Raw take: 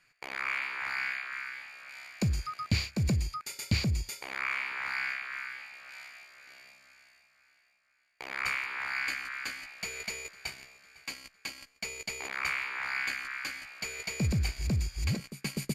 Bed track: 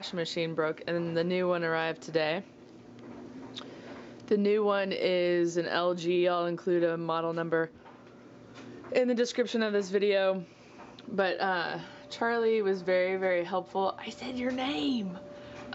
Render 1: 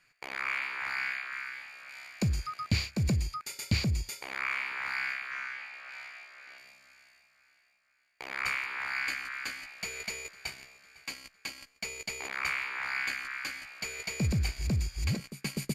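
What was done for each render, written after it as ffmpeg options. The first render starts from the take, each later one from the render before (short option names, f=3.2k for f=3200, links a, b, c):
-filter_complex "[0:a]asettb=1/sr,asplit=3[a][b][c];[a]atrim=end=5.314[d];[b]atrim=start=5.31:end=6.58,asetpts=PTS-STARTPTS,afade=t=in:d=0.004:c=qsin,afade=t=out:st=1.266:d=0.004:c=qsin,asplit=2[e][f];[f]highpass=f=720:p=1,volume=10dB,asoftclip=type=tanh:threshold=-27dB[g];[e][g]amix=inputs=2:normalize=0,lowpass=f=2.3k:p=1,volume=-6dB[h];[c]atrim=start=6.576[i];[d][h]acrossfade=d=0.004:c1=hsin:c2=qsin[j];[j][i]acrossfade=d=0.004:c1=qsin:c2=hsin"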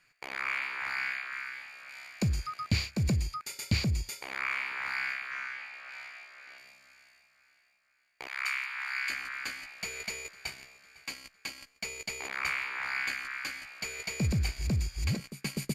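-filter_complex "[0:a]asettb=1/sr,asplit=3[a][b][c];[a]atrim=end=8.274[d];[b]atrim=start=8.27:end=9.1,asetpts=PTS-STARTPTS,afade=t=in:d=0.004:c=qsin,afade=t=out:st=0.826:d=0.004:c=qsin,highpass=1.2k[e];[c]atrim=start=9.096[f];[d][e]acrossfade=d=0.004:c1=hsin:c2=qsin[g];[g][f]acrossfade=d=0.004:c1=qsin:c2=hsin"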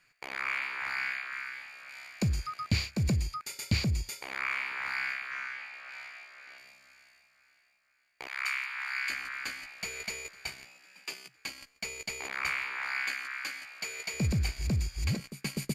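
-filter_complex "[0:a]asettb=1/sr,asplit=3[a][b][c];[a]atrim=end=10.654[d];[b]atrim=start=10.65:end=11.37,asetpts=PTS-STARTPTS,afade=t=in:d=0.004:c=qsin,afade=t=out:st=0.716:d=0.004:c=qsin,afreqshift=120[e];[c]atrim=start=11.366[f];[d][e]acrossfade=d=0.004:c1=hsin:c2=qsin[g];[g][f]acrossfade=d=0.004:c1=qsin:c2=hsin,asettb=1/sr,asplit=3[h][i][j];[h]atrim=end=12.754[k];[i]atrim=start=12.75:end=14.14,asetpts=PTS-STARTPTS,afade=t=in:d=0.004:c=qsin,afade=t=out:st=1.386:d=0.004:c=qsin,highpass=f=330:p=1[l];[j]atrim=start=14.136[m];[k][l]acrossfade=d=0.004:c1=hsin:c2=qsin[n];[n][m]acrossfade=d=0.004:c1=qsin:c2=hsin"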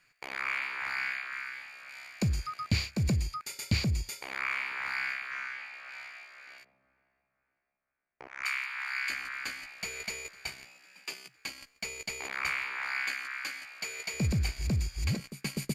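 -filter_complex "[0:a]asplit=3[a][b][c];[a]afade=t=out:st=6.63:d=0.02[d];[b]adynamicsmooth=sensitivity=1.5:basefreq=850,afade=t=in:st=6.63:d=0.02,afade=t=out:st=8.42:d=0.02[e];[c]afade=t=in:st=8.42:d=0.02[f];[d][e][f]amix=inputs=3:normalize=0"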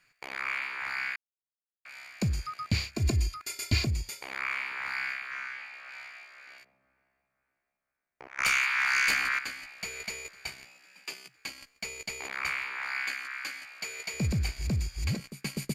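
-filter_complex "[0:a]asettb=1/sr,asplit=3[a][b][c];[a]atrim=end=2.944[d];[b]atrim=start=2.94:end=3.87,asetpts=PTS-STARTPTS,afade=t=in:d=0.004:c=qsin,afade=t=out:st=0.926:d=0.004:c=qsin,aecho=1:1:2.9:0.95,atrim=end_sample=41013[e];[c]atrim=start=3.866[f];[d][e]acrossfade=d=0.004:c1=hsin:c2=qsin[g];[g][f]acrossfade=d=0.004:c1=qsin:c2=hsin,asettb=1/sr,asplit=3[h][i][j];[h]atrim=end=8.384[k];[i]atrim=start=8.38:end=9.39,asetpts=PTS-STARTPTS,afade=t=in:d=0.004:c=qsin,afade=t=out:st=1.006:d=0.004:c=qsin,aeval=exprs='0.1*sin(PI/2*2.24*val(0)/0.1)':c=same[l];[j]atrim=start=9.386[m];[k][l]acrossfade=d=0.004:c1=hsin:c2=qsin[n];[n][m]acrossfade=d=0.004:c1=qsin:c2=hsin,asplit=3[o][p][q];[o]atrim=end=1.16,asetpts=PTS-STARTPTS,afade=t=out:st=1.156:d=0.004:c=hsin[r];[p]atrim=start=1.16:end=1.85,asetpts=PTS-STARTPTS,volume=0[s];[q]atrim=start=1.85,asetpts=PTS-STARTPTS,afade=t=in:d=0.004:c=hsin[t];[r][s][t]concat=n=3:v=0:a=1"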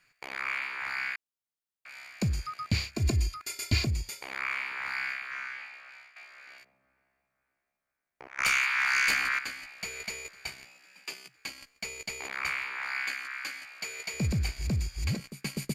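-filter_complex "[0:a]asplit=2[a][b];[a]atrim=end=6.16,asetpts=PTS-STARTPTS,afade=t=out:st=5.63:d=0.53:silence=0.199526[c];[b]atrim=start=6.16,asetpts=PTS-STARTPTS,afade=t=in:d=0.004:c=hsin:silence=0.199526[d];[c][d]concat=n=2:v=0:a=1"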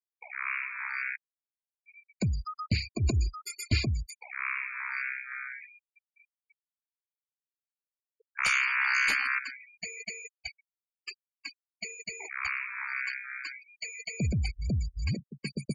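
-af "afftfilt=real='re*gte(hypot(re,im),0.0251)':imag='im*gte(hypot(re,im),0.0251)':win_size=1024:overlap=0.75,adynamicequalizer=threshold=0.00282:dfrequency=5300:dqfactor=1.8:tfrequency=5300:tqfactor=1.8:attack=5:release=100:ratio=0.375:range=2:mode=cutabove:tftype=bell"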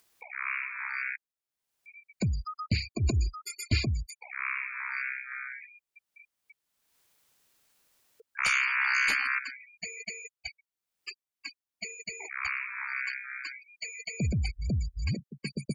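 -af "acompressor=mode=upward:threshold=-46dB:ratio=2.5"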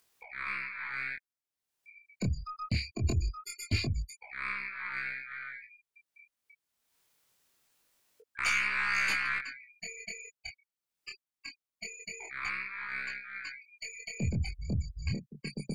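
-af "aeval=exprs='0.178*(cos(1*acos(clip(val(0)/0.178,-1,1)))-cos(1*PI/2))+0.00794*(cos(6*acos(clip(val(0)/0.178,-1,1)))-cos(6*PI/2))':c=same,flanger=delay=20:depth=6.2:speed=0.23"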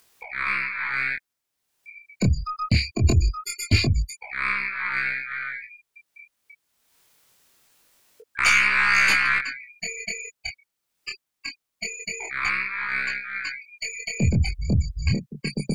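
-af "volume=11dB"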